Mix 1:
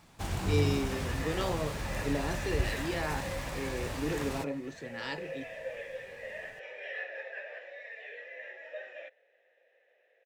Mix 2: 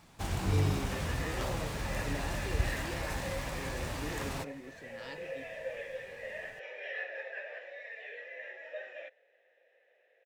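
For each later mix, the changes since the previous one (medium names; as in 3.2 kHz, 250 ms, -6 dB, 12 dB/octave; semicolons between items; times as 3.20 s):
speech -8.5 dB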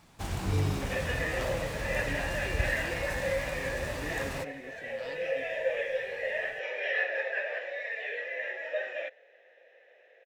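second sound +9.5 dB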